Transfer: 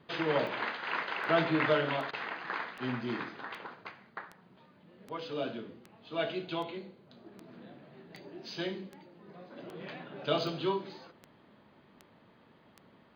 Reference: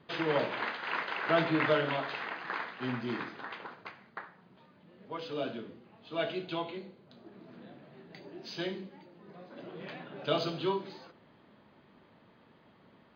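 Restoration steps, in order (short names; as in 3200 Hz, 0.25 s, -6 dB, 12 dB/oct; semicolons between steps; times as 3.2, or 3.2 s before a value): de-click; interpolate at 2.11, 20 ms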